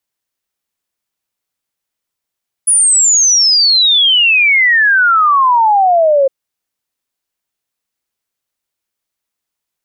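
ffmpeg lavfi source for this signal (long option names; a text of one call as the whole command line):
ffmpeg -f lavfi -i "aevalsrc='0.473*clip(min(t,3.61-t)/0.01,0,1)*sin(2*PI*10000*3.61/log(530/10000)*(exp(log(530/10000)*t/3.61)-1))':duration=3.61:sample_rate=44100" out.wav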